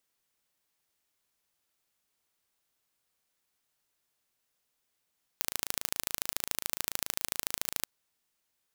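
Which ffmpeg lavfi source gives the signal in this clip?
-f lavfi -i "aevalsrc='0.794*eq(mod(n,1621),0)*(0.5+0.5*eq(mod(n,3242),0))':d=2.43:s=44100"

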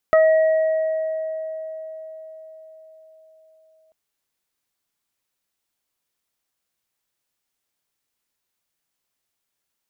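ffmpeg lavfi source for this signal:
-f lavfi -i "aevalsrc='0.299*pow(10,-3*t/4.98)*sin(2*PI*636*t)+0.141*pow(10,-3*t/0.22)*sin(2*PI*1272*t)+0.0668*pow(10,-3*t/2.6)*sin(2*PI*1908*t)':d=3.79:s=44100"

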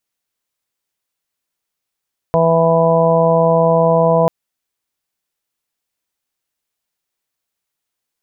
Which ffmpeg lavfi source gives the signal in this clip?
-f lavfi -i "aevalsrc='0.15*sin(2*PI*165*t)+0.0376*sin(2*PI*330*t)+0.188*sin(2*PI*495*t)+0.211*sin(2*PI*660*t)+0.0596*sin(2*PI*825*t)+0.119*sin(2*PI*990*t)':d=1.94:s=44100"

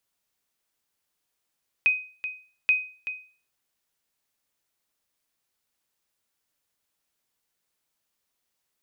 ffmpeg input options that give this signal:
-f lavfi -i "aevalsrc='0.211*(sin(2*PI*2510*mod(t,0.83))*exp(-6.91*mod(t,0.83)/0.4)+0.266*sin(2*PI*2510*max(mod(t,0.83)-0.38,0))*exp(-6.91*max(mod(t,0.83)-0.38,0)/0.4))':d=1.66:s=44100"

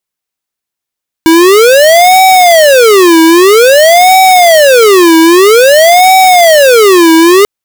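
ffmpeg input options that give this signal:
-f lavfi -i "aevalsrc='0.708*(2*lt(mod((541*t-217/(2*PI*0.51)*sin(2*PI*0.51*t)),1),0.5)-1)':d=6.19:s=44100"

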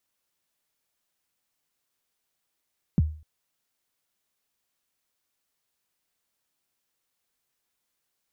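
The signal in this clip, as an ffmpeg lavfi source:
-f lavfi -i "aevalsrc='0.2*pow(10,-3*t/0.41)*sin(2*PI*(230*0.028/log(77/230)*(exp(log(77/230)*min(t,0.028)/0.028)-1)+77*max(t-0.028,0)))':d=0.25:s=44100"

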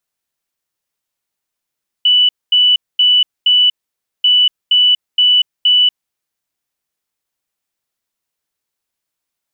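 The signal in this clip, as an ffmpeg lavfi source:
-f lavfi -i "aevalsrc='0.447*sin(2*PI*2970*t)*clip(min(mod(mod(t,2.19),0.47),0.24-mod(mod(t,2.19),0.47))/0.005,0,1)*lt(mod(t,2.19),1.88)':d=4.38:s=44100"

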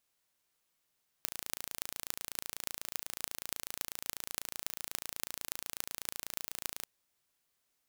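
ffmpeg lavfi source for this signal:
-f lavfi -i "aevalsrc='0.501*eq(mod(n,1569),0)*(0.5+0.5*eq(mod(n,12552),0))':d=5.6:s=44100"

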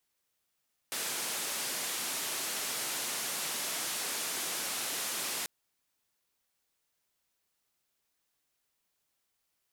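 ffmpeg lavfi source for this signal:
-f lavfi -i "anoisesrc=c=white:d=4.54:r=44100:seed=1,highpass=f=200,lowpass=f=12000,volume=-28dB"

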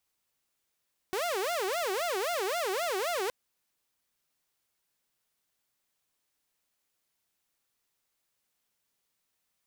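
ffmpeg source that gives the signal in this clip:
-f lavfi -i "aevalsrc='0.0473*(2*mod((539*t-169/(2*PI*3.8)*sin(2*PI*3.8*t)),1)-1)':d=2.17:s=44100"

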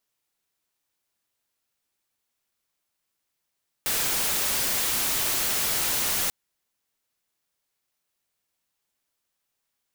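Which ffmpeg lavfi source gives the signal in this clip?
-f lavfi -i "anoisesrc=c=white:a=0.0919:d=2.44:r=44100:seed=1"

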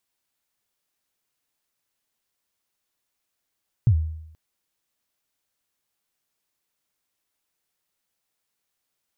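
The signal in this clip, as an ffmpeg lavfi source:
-f lavfi -i "aevalsrc='0.282*pow(10,-3*t/0.78)*sin(2*PI*(130*0.076/log(79/130)*(exp(log(79/130)*min(t,0.076)/0.076)-1)+79*max(t-0.076,0)))':d=0.48:s=44100"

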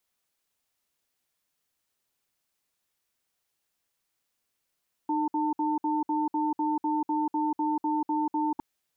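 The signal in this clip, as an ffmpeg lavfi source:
-f lavfi -i "aevalsrc='0.0447*(sin(2*PI*306*t)+sin(2*PI*896*t))*clip(min(mod(t,0.25),0.19-mod(t,0.25))/0.005,0,1)':d=3.51:s=44100"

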